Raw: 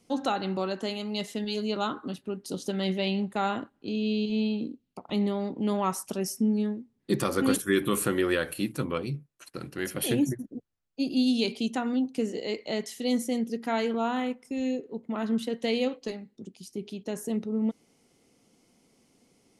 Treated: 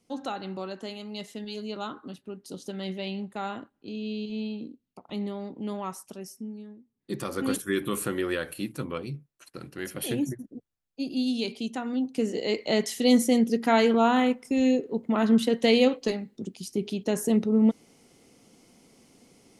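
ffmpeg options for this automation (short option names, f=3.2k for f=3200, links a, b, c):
-af "volume=17.5dB,afade=t=out:st=5.64:d=1.02:silence=0.298538,afade=t=in:st=6.66:d=0.88:silence=0.223872,afade=t=in:st=11.87:d=1:silence=0.316228"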